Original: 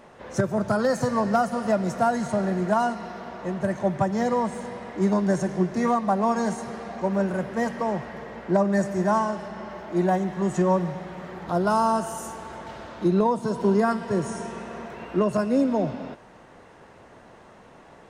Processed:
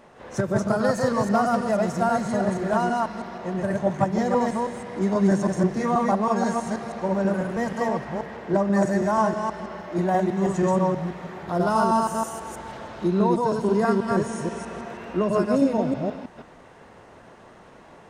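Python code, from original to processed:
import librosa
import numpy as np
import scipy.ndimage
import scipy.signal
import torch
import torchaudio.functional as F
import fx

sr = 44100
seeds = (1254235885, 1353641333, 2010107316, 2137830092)

y = fx.reverse_delay(x, sr, ms=161, wet_db=-0.5)
y = y * 10.0 ** (-1.5 / 20.0)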